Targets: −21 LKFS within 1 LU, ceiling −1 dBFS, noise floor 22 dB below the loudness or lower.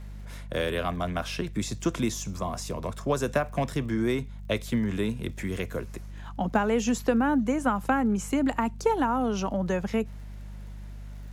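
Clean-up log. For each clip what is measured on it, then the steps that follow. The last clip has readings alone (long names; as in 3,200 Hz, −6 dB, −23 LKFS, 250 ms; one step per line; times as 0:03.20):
crackle rate 38 per second; mains hum 50 Hz; hum harmonics up to 200 Hz; level of the hum −37 dBFS; integrated loudness −28.5 LKFS; sample peak −10.0 dBFS; target loudness −21.0 LKFS
→ click removal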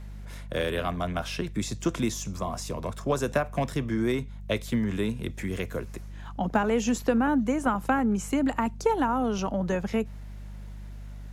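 crackle rate 0.53 per second; mains hum 50 Hz; hum harmonics up to 200 Hz; level of the hum −37 dBFS
→ hum removal 50 Hz, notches 4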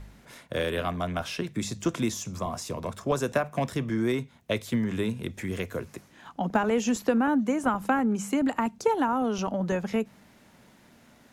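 mains hum none found; integrated loudness −28.5 LKFS; sample peak −10.5 dBFS; target loudness −21.0 LKFS
→ level +7.5 dB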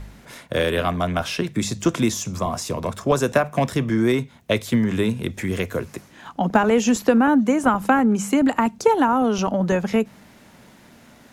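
integrated loudness −21.0 LKFS; sample peak −3.0 dBFS; background noise floor −50 dBFS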